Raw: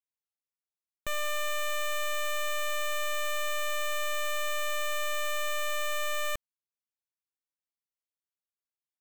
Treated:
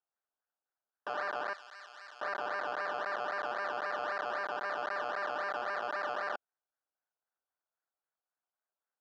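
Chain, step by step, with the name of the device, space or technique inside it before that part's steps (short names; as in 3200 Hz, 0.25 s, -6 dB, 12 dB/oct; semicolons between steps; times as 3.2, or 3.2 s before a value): circuit-bent sampling toy (decimation with a swept rate 18×, swing 60% 3.8 Hz; speaker cabinet 530–4100 Hz, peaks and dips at 730 Hz +5 dB, 1500 Hz +9 dB, 2300 Hz -6 dB, 3600 Hz -9 dB); 1.53–2.21 differentiator; gain -3 dB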